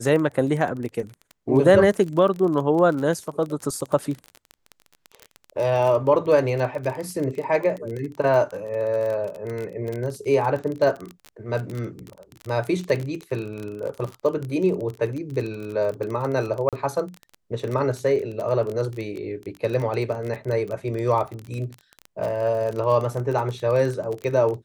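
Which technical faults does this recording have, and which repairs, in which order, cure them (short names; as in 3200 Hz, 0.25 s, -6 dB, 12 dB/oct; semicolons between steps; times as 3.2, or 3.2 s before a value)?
crackle 28/s -27 dBFS
16.69–16.73 gap 37 ms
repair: de-click; interpolate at 16.69, 37 ms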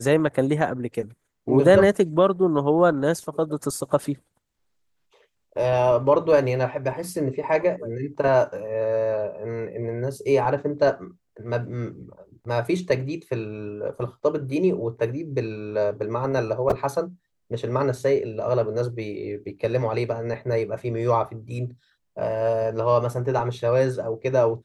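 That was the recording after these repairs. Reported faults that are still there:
none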